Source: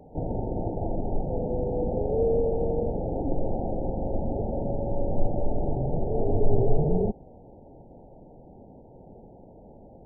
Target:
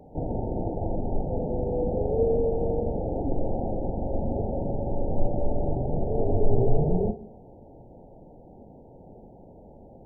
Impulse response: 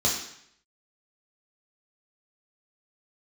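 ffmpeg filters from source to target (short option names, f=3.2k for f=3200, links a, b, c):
-filter_complex "[0:a]asplit=2[a][b];[1:a]atrim=start_sample=2205,adelay=32[c];[b][c]afir=irnorm=-1:irlink=0,volume=-25dB[d];[a][d]amix=inputs=2:normalize=0"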